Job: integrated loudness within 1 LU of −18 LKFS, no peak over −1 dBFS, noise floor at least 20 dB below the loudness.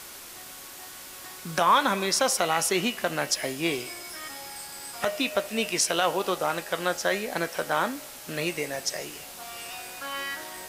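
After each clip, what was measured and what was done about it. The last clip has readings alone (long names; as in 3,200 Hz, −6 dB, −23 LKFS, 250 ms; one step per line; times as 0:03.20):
background noise floor −43 dBFS; target noise floor −48 dBFS; integrated loudness −27.5 LKFS; sample peak −9.0 dBFS; target loudness −18.0 LKFS
→ broadband denoise 6 dB, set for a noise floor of −43 dBFS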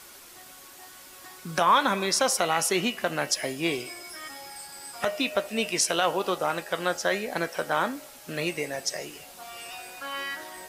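background noise floor −48 dBFS; integrated loudness −27.0 LKFS; sample peak −9.0 dBFS; target loudness −18.0 LKFS
→ level +9 dB
brickwall limiter −1 dBFS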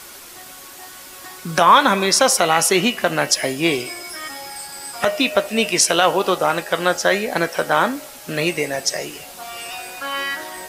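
integrated loudness −18.0 LKFS; sample peak −1.0 dBFS; background noise floor −39 dBFS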